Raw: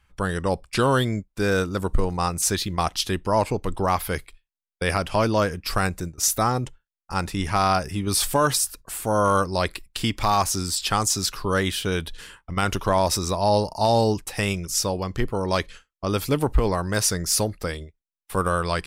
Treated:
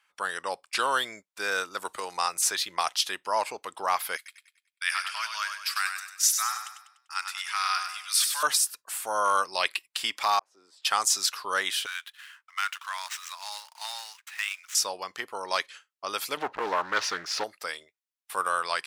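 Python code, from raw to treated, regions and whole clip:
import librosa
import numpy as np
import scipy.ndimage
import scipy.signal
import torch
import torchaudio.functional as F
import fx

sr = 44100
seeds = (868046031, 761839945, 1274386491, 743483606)

y = fx.chain(x, sr, fx.peak_eq(hz=220.0, db=-4.5, octaves=0.32),
    fx.band_squash(depth_pct=40), at=(1.85, 2.96))
y = fx.chain(y, sr, fx.highpass(hz=1300.0, slope=24),
    fx.echo_feedback(ms=98, feedback_pct=44, wet_db=-7), at=(4.16, 8.43))
y = fx.chain(y, sr, fx.peak_eq(hz=2800.0, db=8.5, octaves=0.53),
    fx.notch(hz=1400.0, q=14.0), at=(9.44, 9.88))
y = fx.chain(y, sr, fx.bandpass_q(hz=440.0, q=1.6),
    fx.auto_swell(attack_ms=587.0), at=(10.39, 10.85))
y = fx.chain(y, sr, fx.median_filter(points=9),
    fx.highpass(hz=1300.0, slope=24), at=(11.86, 14.75))
y = fx.chain(y, sr, fx.air_absorb(metres=260.0),
    fx.leveller(passes=2),
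    fx.doppler_dist(depth_ms=0.57), at=(16.37, 17.44))
y = scipy.signal.sosfilt(scipy.signal.butter(2, 940.0, 'highpass', fs=sr, output='sos'), y)
y = fx.high_shelf(y, sr, hz=12000.0, db=-4.0)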